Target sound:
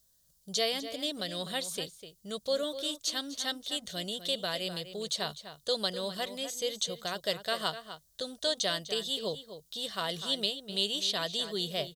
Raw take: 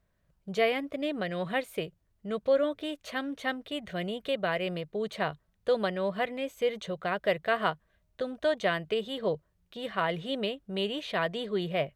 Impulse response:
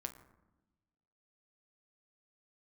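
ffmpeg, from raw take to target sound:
-filter_complex "[0:a]aexciter=amount=15.6:drive=6.1:freq=3600,acrossover=split=7800[link_01][link_02];[link_02]acompressor=threshold=-47dB:ratio=4:attack=1:release=60[link_03];[link_01][link_03]amix=inputs=2:normalize=0,asplit=2[link_04][link_05];[link_05]adelay=250.7,volume=-11dB,highshelf=frequency=4000:gain=-5.64[link_06];[link_04][link_06]amix=inputs=2:normalize=0,volume=-6.5dB"

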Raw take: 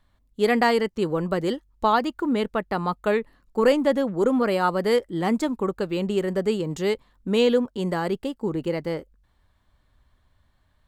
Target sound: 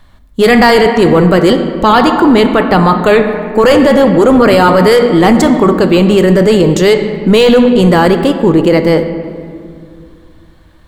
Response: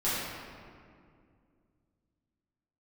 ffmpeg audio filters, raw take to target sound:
-filter_complex "[0:a]asplit=2[link_01][link_02];[1:a]atrim=start_sample=2205,lowpass=8300[link_03];[link_02][link_03]afir=irnorm=-1:irlink=0,volume=-18dB[link_04];[link_01][link_04]amix=inputs=2:normalize=0,apsyclip=21dB,volume=-2dB"

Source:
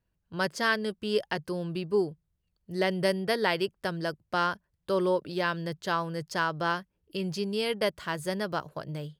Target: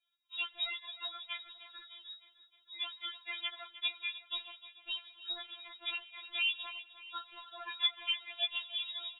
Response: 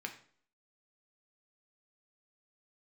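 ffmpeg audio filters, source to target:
-filter_complex "[0:a]lowshelf=frequency=300:gain=8.5,acompressor=threshold=-29dB:ratio=6,afreqshift=-270,aecho=1:1:306|612|918|1224|1530:0.188|0.102|0.0549|0.0297|0.016,asplit=2[link_01][link_02];[1:a]atrim=start_sample=2205,asetrate=39690,aresample=44100[link_03];[link_02][link_03]afir=irnorm=-1:irlink=0,volume=-15dB[link_04];[link_01][link_04]amix=inputs=2:normalize=0,lowpass=frequency=3200:width_type=q:width=0.5098,lowpass=frequency=3200:width_type=q:width=0.6013,lowpass=frequency=3200:width_type=q:width=0.9,lowpass=frequency=3200:width_type=q:width=2.563,afreqshift=-3800,afftfilt=real='re*4*eq(mod(b,16),0)':imag='im*4*eq(mod(b,16),0)':win_size=2048:overlap=0.75"

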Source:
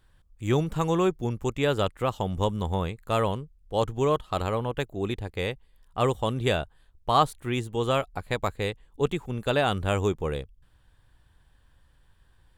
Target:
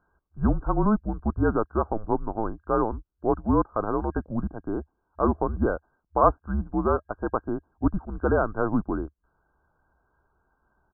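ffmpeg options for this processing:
ffmpeg -i in.wav -af "afftfilt=real='re*between(b*sr/4096,120,1600)':imag='im*between(b*sr/4096,120,1600)':win_size=4096:overlap=0.75,afreqshift=-190,asetrate=50715,aresample=44100,volume=2.5dB" out.wav

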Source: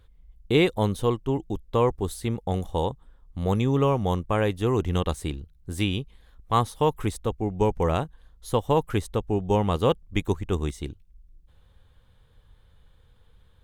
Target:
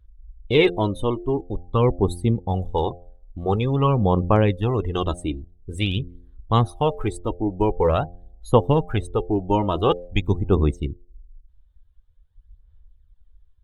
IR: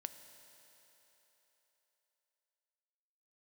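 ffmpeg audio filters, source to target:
-af "afftdn=noise_reduction=23:noise_floor=-39,bandreject=frequency=87.81:width_type=h:width=4,bandreject=frequency=175.62:width_type=h:width=4,bandreject=frequency=263.43:width_type=h:width=4,bandreject=frequency=351.24:width_type=h:width=4,bandreject=frequency=439.05:width_type=h:width=4,bandreject=frequency=526.86:width_type=h:width=4,bandreject=frequency=614.67:width_type=h:width=4,bandreject=frequency=702.48:width_type=h:width=4,bandreject=frequency=790.29:width_type=h:width=4,aphaser=in_gain=1:out_gain=1:delay=3.3:decay=0.52:speed=0.47:type=sinusoidal,volume=2.5dB"

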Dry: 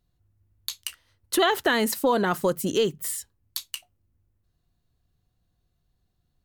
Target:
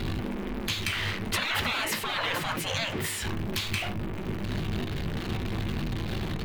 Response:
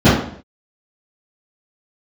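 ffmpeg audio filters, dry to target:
-filter_complex "[0:a]aeval=exprs='val(0)+0.5*0.0251*sgn(val(0))':channel_layout=same,equalizer=frequency=2600:width_type=o:width=2.1:gain=11,asplit=2[link_01][link_02];[1:a]atrim=start_sample=2205,afade=type=out:start_time=0.14:duration=0.01,atrim=end_sample=6615,asetrate=66150,aresample=44100[link_03];[link_02][link_03]afir=irnorm=-1:irlink=0,volume=-30dB[link_04];[link_01][link_04]amix=inputs=2:normalize=0,afftfilt=real='re*lt(hypot(re,im),0.2)':imag='im*lt(hypot(re,im),0.2)':win_size=1024:overlap=0.75,bass=frequency=250:gain=5,treble=frequency=4000:gain=-11,volume=1.5dB"

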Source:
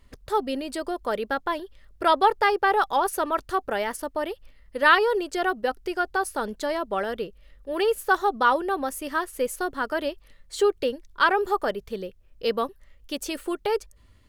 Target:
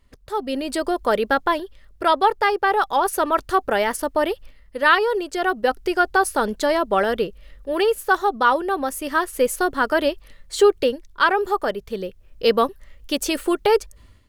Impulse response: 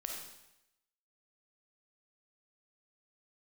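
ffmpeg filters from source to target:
-af "dynaudnorm=framelen=360:gausssize=3:maxgain=13.5dB,volume=-3.5dB"

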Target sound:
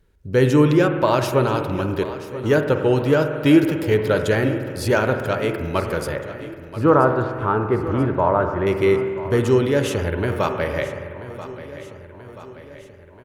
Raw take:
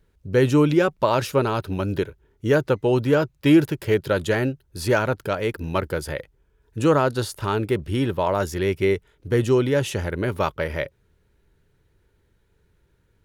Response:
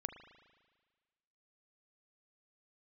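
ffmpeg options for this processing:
-filter_complex "[0:a]asettb=1/sr,asplit=3[link_01][link_02][link_03];[link_01]atrim=end=6.164[link_04];[link_02]atrim=start=6.16:end=8.67,asetpts=PTS-STARTPTS,afade=type=in:duration=0.004:curve=qsin,afade=type=out:start_time=2.506:duration=0.004:curve=qsin,lowpass=frequency=1300:width_type=q:width=1.6[link_05];[link_03]atrim=start=8.666[link_06];[link_04][link_05]acrossfade=duration=0.004:curve1=hsin:curve2=qsin[link_07];[link_07][link_06]acrossfade=duration=0.004:curve1=qsin:curve2=hsin,aecho=1:1:983|1966|2949|3932|4915:0.178|0.0996|0.0558|0.0312|0.0175[link_08];[1:a]atrim=start_sample=2205,asetrate=35280,aresample=44100[link_09];[link_08][link_09]afir=irnorm=-1:irlink=0,volume=3dB"

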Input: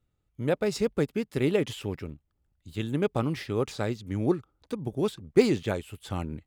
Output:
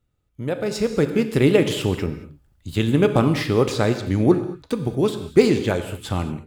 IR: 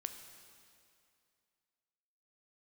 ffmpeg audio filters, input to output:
-filter_complex "[0:a]asplit=2[link_01][link_02];[link_02]acompressor=threshold=-33dB:ratio=6,volume=-1dB[link_03];[link_01][link_03]amix=inputs=2:normalize=0[link_04];[1:a]atrim=start_sample=2205,afade=type=out:start_time=0.28:duration=0.01,atrim=end_sample=12789[link_05];[link_04][link_05]afir=irnorm=-1:irlink=0,dynaudnorm=framelen=630:gausssize=3:maxgain=11.5dB"

